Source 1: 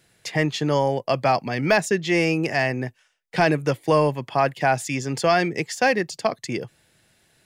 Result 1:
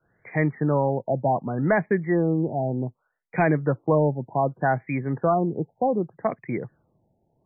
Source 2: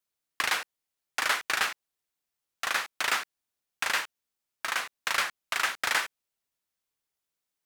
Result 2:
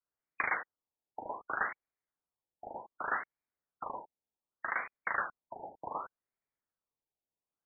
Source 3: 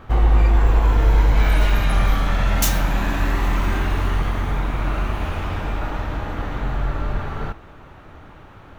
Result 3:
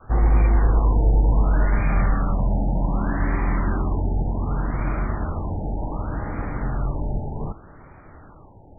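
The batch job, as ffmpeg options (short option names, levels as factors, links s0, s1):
-af "adynamicequalizer=threshold=0.02:dfrequency=180:dqfactor=0.78:tfrequency=180:tqfactor=0.78:attack=5:release=100:ratio=0.375:range=2.5:mode=boostabove:tftype=bell,afftfilt=real='re*lt(b*sr/1024,900*pow(2500/900,0.5+0.5*sin(2*PI*0.66*pts/sr)))':imag='im*lt(b*sr/1024,900*pow(2500/900,0.5+0.5*sin(2*PI*0.66*pts/sr)))':win_size=1024:overlap=0.75,volume=0.708"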